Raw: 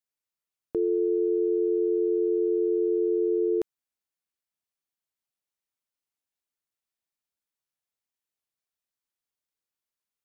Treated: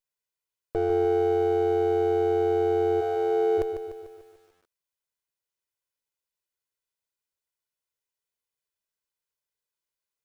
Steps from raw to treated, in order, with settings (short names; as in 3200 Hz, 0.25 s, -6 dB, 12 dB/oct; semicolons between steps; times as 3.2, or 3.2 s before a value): minimum comb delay 2 ms; 3–3.57 HPF 550 Hz -> 290 Hz 24 dB/oct; lo-fi delay 0.148 s, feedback 55%, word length 10-bit, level -8.5 dB; gain +1.5 dB